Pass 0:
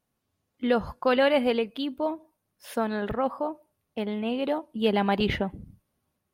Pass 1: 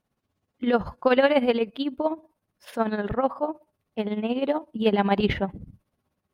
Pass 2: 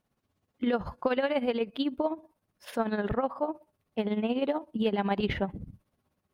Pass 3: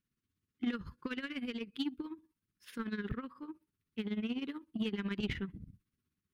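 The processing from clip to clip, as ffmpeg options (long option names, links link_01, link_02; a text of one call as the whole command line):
ffmpeg -i in.wav -af "tremolo=f=16:d=0.68,aemphasis=mode=reproduction:type=cd,volume=5dB" out.wav
ffmpeg -i in.wav -af "acompressor=threshold=-24dB:ratio=6" out.wav
ffmpeg -i in.wav -af "asuperstop=centerf=690:order=4:qfactor=0.68,aeval=exprs='0.126*(cos(1*acos(clip(val(0)/0.126,-1,1)))-cos(1*PI/2))+0.00562*(cos(7*acos(clip(val(0)/0.126,-1,1)))-cos(7*PI/2))':channel_layout=same,volume=-5dB" out.wav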